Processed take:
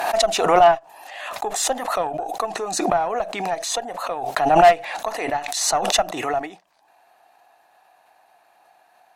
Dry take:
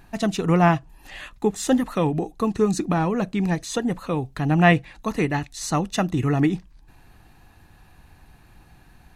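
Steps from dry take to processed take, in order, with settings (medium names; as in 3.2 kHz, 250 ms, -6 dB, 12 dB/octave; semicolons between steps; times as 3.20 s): resonant high-pass 680 Hz, resonance Q 4.9; Chebyshev shaper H 4 -21 dB, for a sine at -1 dBFS; swell ahead of each attack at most 42 dB/s; trim -5 dB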